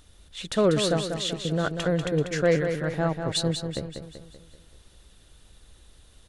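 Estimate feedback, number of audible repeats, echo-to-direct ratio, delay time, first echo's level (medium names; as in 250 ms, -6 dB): 50%, 5, -5.5 dB, 192 ms, -7.0 dB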